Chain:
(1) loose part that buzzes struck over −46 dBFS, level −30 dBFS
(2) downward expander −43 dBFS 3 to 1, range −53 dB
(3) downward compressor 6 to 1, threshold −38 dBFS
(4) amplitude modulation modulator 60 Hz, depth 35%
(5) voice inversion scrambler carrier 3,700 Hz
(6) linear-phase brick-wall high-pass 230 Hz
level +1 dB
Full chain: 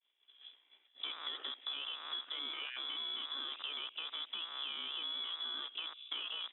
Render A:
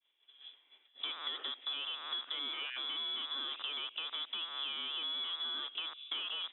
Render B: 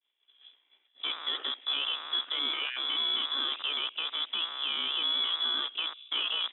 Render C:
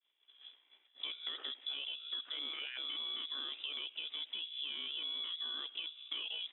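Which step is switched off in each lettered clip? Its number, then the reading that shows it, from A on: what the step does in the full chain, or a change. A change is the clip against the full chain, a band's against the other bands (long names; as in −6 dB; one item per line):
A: 4, change in integrated loudness +2.5 LU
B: 3, average gain reduction 8.5 dB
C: 1, 1 kHz band −6.5 dB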